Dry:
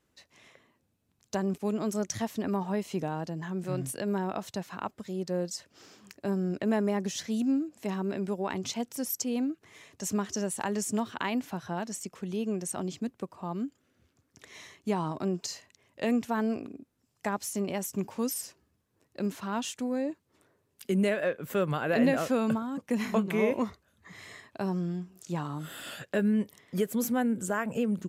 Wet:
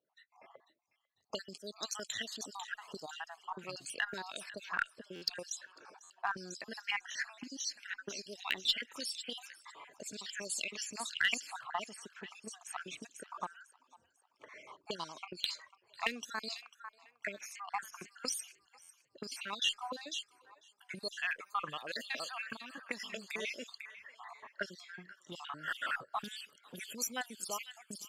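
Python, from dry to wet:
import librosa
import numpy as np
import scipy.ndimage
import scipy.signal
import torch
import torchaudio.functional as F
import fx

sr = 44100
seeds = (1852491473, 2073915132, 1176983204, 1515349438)

p1 = fx.spec_dropout(x, sr, seeds[0], share_pct=57)
p2 = fx.noise_reduce_blind(p1, sr, reduce_db=12)
p3 = fx.level_steps(p2, sr, step_db=16)
p4 = p2 + F.gain(torch.from_numpy(p3), 1.5).numpy()
p5 = fx.comb_fb(p4, sr, f0_hz=600.0, decay_s=0.41, harmonics='all', damping=0.0, mix_pct=30, at=(21.35, 23.35))
p6 = p5 + fx.echo_wet_highpass(p5, sr, ms=497, feedback_pct=46, hz=3300.0, wet_db=-6, dry=0)
p7 = fx.auto_wah(p6, sr, base_hz=780.0, top_hz=4500.0, q=2.9, full_db=-26.0, direction='up')
p8 = fx.cheby_harmonics(p7, sr, harmonics=(3, 4, 5, 7), levels_db=(-19, -34, -16, -22), full_scale_db=-25.5)
p9 = fx.buffer_glitch(p8, sr, at_s=(5.15, 6.03, 18.82), block=512, repeats=5)
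y = F.gain(torch.from_numpy(p9), 11.5).numpy()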